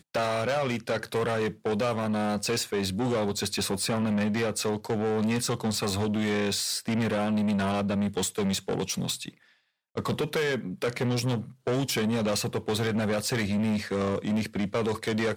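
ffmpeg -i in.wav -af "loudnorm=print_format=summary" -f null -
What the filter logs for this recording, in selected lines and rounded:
Input Integrated:    -28.1 LUFS
Input True Peak:     -19.6 dBTP
Input LRA:             1.5 LU
Input Threshold:     -38.3 LUFS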